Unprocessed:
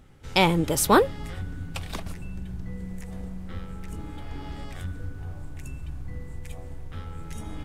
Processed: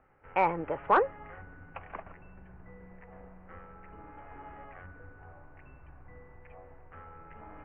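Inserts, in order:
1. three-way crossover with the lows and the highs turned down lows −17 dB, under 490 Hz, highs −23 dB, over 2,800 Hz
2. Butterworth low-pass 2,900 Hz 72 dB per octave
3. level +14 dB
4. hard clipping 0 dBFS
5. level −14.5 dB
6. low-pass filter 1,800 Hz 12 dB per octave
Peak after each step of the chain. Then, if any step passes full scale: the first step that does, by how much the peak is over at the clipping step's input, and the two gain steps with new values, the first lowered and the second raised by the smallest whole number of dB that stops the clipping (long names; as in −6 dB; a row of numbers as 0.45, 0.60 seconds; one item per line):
−7.0, −7.0, +7.0, 0.0, −14.5, −14.0 dBFS
step 3, 7.0 dB
step 3 +7 dB, step 5 −7.5 dB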